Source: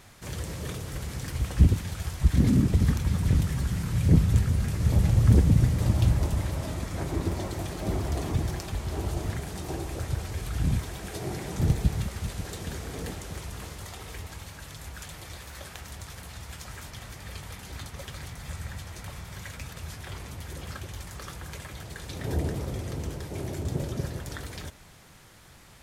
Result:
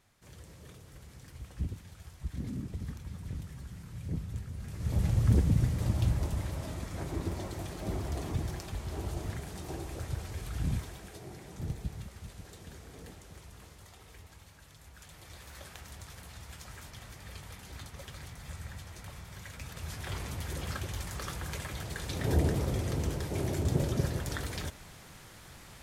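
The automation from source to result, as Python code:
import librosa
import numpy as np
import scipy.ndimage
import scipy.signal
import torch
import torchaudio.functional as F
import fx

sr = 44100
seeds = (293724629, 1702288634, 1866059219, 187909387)

y = fx.gain(x, sr, db=fx.line((4.52, -16.5), (5.03, -6.0), (10.79, -6.0), (11.26, -13.0), (14.88, -13.0), (15.5, -6.0), (19.48, -6.0), (20.13, 1.5)))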